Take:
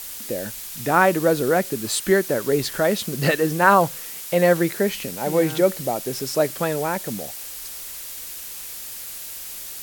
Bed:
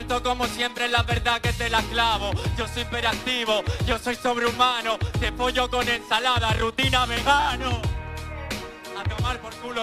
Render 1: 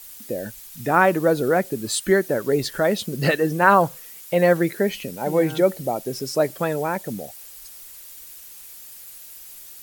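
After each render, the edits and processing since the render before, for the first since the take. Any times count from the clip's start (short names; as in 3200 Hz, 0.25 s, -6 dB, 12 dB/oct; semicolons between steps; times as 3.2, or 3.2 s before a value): denoiser 10 dB, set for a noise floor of -35 dBFS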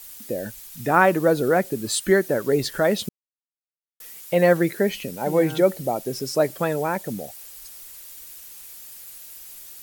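3.09–4 mute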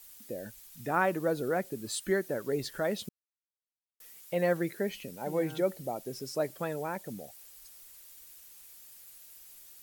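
gain -11 dB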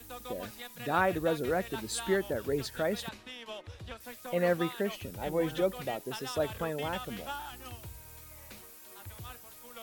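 add bed -20.5 dB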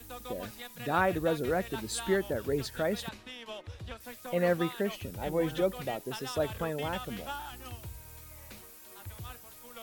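low shelf 170 Hz +3.5 dB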